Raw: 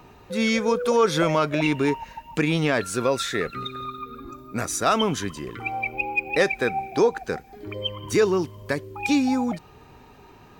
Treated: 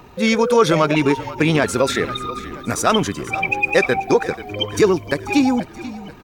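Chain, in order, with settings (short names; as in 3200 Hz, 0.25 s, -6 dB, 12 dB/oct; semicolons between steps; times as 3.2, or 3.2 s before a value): tempo 1.7×; frequency-shifting echo 0.484 s, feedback 54%, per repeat -45 Hz, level -16 dB; gain +6 dB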